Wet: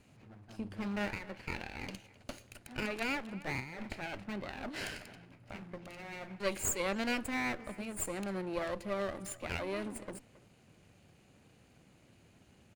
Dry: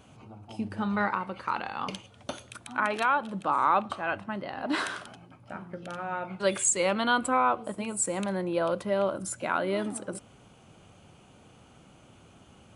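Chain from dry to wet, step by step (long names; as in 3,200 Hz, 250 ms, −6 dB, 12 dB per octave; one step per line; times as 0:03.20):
lower of the sound and its delayed copy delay 0.42 ms
0:03.60–0:05.78: compressor whose output falls as the input rises −34 dBFS, ratio −1
far-end echo of a speakerphone 270 ms, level −18 dB
level −7 dB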